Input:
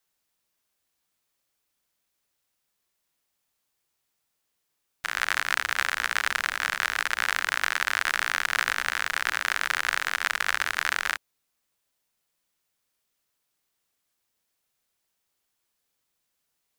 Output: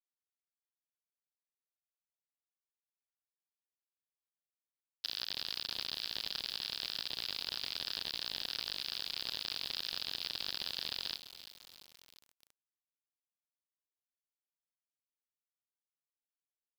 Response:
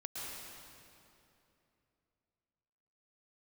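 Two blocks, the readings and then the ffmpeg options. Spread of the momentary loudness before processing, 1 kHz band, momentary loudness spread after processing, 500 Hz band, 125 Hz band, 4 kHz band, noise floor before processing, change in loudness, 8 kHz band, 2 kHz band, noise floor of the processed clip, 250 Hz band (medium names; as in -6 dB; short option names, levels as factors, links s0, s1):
2 LU, -23.5 dB, 6 LU, -12.0 dB, no reading, -3.0 dB, -79 dBFS, -11.5 dB, -17.5 dB, -24.0 dB, under -85 dBFS, -6.5 dB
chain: -af "aexciter=amount=13.6:drive=6:freq=2900,highshelf=f=2100:g=11.5,aresample=11025,asoftclip=type=tanh:threshold=0.944,aresample=44100,acompressor=threshold=0.01:ratio=2,aecho=1:1:343|686|1029|1372|1715|2058:0.2|0.112|0.0626|0.035|0.0196|0.011,acrusher=bits=6:mix=0:aa=0.000001,volume=0.398"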